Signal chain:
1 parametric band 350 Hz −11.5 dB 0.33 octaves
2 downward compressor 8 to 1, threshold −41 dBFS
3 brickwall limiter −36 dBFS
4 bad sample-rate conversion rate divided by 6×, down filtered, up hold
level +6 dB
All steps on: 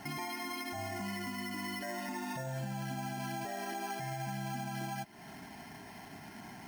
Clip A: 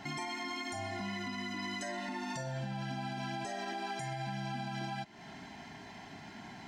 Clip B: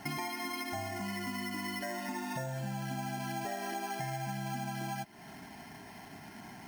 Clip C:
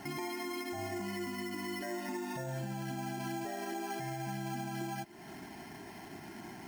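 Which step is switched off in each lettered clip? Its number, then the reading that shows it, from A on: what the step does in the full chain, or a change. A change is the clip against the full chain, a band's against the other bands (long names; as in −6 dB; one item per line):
4, 4 kHz band +2.5 dB
3, change in crest factor +3.0 dB
1, 500 Hz band +4.0 dB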